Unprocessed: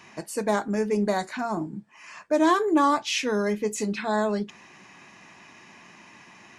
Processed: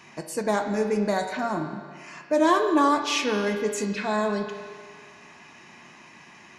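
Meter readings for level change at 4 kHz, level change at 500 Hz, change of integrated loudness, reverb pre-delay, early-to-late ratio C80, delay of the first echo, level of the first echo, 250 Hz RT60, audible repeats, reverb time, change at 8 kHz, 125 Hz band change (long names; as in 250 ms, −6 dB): +1.0 dB, +1.0 dB, +0.5 dB, 5 ms, 8.0 dB, no echo audible, no echo audible, 1.9 s, no echo audible, 1.9 s, 0.0 dB, 0.0 dB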